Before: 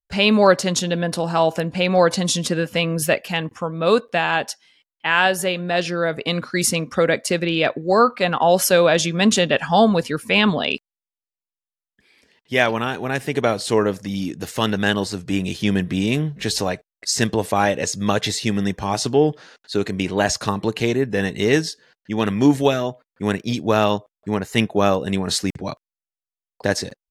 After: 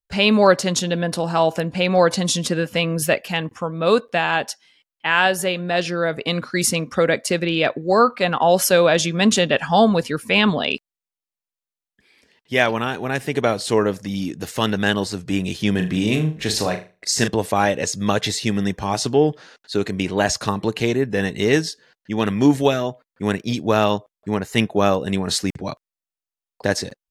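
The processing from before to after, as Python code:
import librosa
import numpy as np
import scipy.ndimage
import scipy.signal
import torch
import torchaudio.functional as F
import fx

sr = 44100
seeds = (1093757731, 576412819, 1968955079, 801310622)

y = fx.room_flutter(x, sr, wall_m=6.6, rt60_s=0.31, at=(15.71, 17.28))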